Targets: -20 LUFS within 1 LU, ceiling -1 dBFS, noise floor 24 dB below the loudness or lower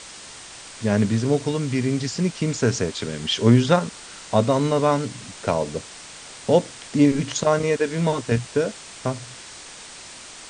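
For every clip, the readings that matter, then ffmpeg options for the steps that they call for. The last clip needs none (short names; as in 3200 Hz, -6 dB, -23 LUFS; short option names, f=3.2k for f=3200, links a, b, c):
noise floor -41 dBFS; noise floor target -46 dBFS; loudness -22.0 LUFS; peak -3.5 dBFS; loudness target -20.0 LUFS
-> -af "afftdn=nr=6:nf=-41"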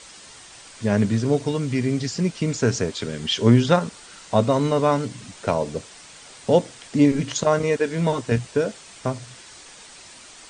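noise floor -45 dBFS; noise floor target -47 dBFS
-> -af "afftdn=nr=6:nf=-45"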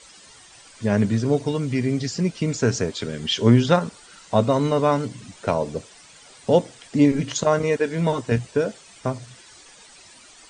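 noise floor -49 dBFS; loudness -22.0 LUFS; peak -3.5 dBFS; loudness target -20.0 LUFS
-> -af "volume=2dB"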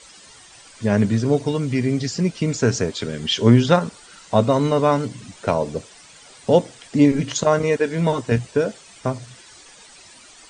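loudness -20.0 LUFS; peak -1.5 dBFS; noise floor -47 dBFS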